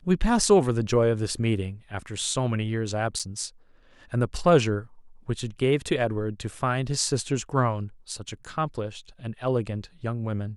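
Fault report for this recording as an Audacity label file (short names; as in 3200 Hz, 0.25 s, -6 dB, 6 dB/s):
3.190000	3.200000	gap 6.1 ms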